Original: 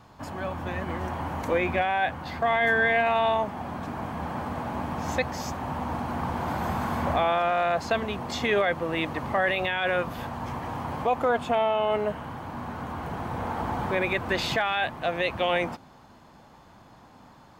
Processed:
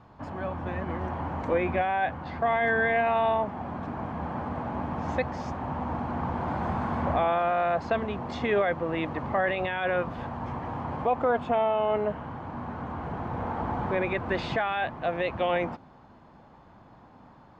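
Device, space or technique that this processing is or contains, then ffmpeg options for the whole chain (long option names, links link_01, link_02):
through cloth: -af "lowpass=6800,highshelf=frequency=3300:gain=-16"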